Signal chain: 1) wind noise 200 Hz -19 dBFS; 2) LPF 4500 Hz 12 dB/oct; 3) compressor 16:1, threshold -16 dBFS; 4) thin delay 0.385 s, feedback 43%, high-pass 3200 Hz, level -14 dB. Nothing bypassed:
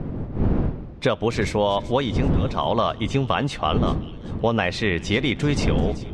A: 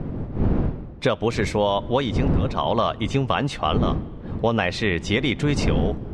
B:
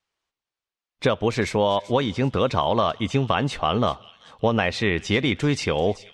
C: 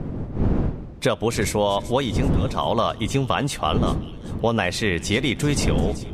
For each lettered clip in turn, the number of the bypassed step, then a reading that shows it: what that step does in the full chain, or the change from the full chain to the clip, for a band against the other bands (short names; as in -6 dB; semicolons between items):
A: 4, echo-to-direct -23.0 dB to none; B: 1, 125 Hz band -3.5 dB; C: 2, 8 kHz band +9.0 dB